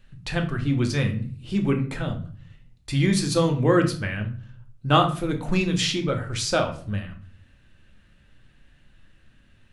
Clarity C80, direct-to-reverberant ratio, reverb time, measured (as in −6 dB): 15.5 dB, 3.5 dB, 0.45 s